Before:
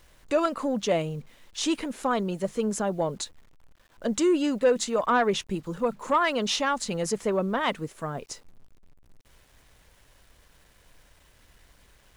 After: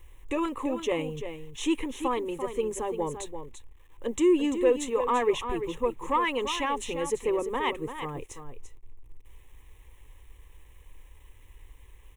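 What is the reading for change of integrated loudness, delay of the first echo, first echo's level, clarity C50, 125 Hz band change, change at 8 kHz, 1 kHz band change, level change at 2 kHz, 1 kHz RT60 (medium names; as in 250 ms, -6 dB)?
-2.0 dB, 341 ms, -9.5 dB, no reverb, -7.0 dB, -5.5 dB, -2.0 dB, -3.5 dB, no reverb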